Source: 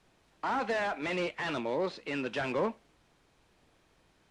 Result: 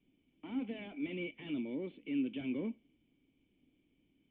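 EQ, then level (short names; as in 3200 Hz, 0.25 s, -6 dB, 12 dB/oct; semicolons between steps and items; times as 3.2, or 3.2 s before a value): vocal tract filter i; low shelf 180 Hz -3.5 dB; +5.5 dB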